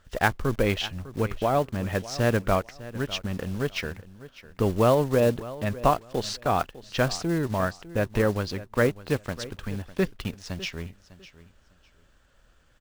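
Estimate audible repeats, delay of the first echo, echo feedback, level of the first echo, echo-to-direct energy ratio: 2, 0.602 s, 22%, -17.0 dB, -17.0 dB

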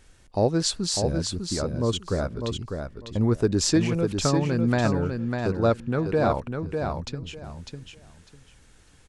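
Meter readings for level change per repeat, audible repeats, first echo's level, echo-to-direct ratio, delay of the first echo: -14.0 dB, 3, -5.5 dB, -5.5 dB, 0.6 s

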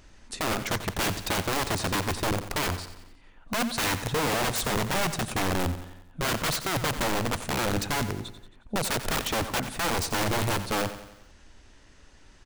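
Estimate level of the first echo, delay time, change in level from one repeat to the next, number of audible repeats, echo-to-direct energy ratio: -12.0 dB, 90 ms, -6.0 dB, 4, -10.5 dB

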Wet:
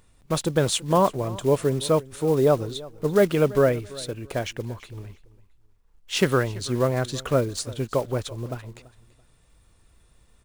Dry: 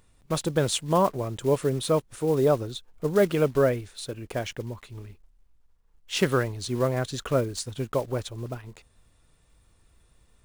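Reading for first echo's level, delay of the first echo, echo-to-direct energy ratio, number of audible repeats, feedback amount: -20.0 dB, 0.335 s, -19.5 dB, 2, 26%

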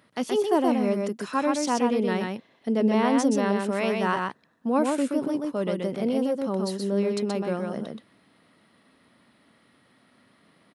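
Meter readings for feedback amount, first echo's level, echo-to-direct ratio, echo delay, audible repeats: no steady repeat, -3.5 dB, -3.5 dB, 0.126 s, 1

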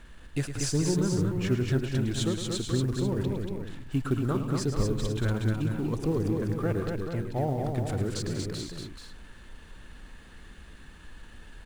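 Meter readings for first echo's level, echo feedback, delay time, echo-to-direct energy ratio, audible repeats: -10.0 dB, no steady repeat, 0.108 s, -1.0 dB, 5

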